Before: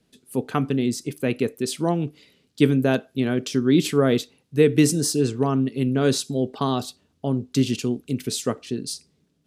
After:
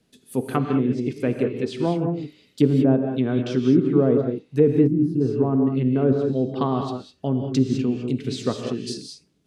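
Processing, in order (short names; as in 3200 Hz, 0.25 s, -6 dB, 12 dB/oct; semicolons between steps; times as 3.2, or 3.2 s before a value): treble ducked by the level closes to 760 Hz, closed at -16.5 dBFS; non-linear reverb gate 0.23 s rising, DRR 4 dB; spectral gain 4.87–5.21, 370–9200 Hz -15 dB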